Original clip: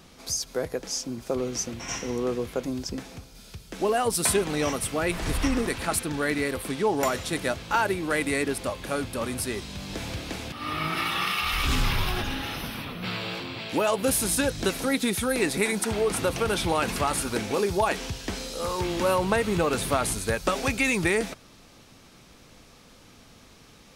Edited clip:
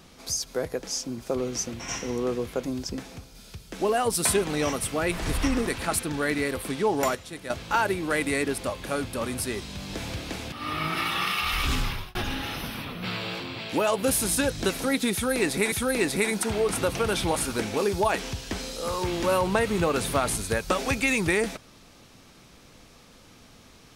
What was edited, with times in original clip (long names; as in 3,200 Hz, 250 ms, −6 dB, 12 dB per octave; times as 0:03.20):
0:07.15–0:07.50: clip gain −10 dB
0:11.49–0:12.15: fade out equal-power
0:15.13–0:15.72: repeat, 2 plays
0:16.76–0:17.12: remove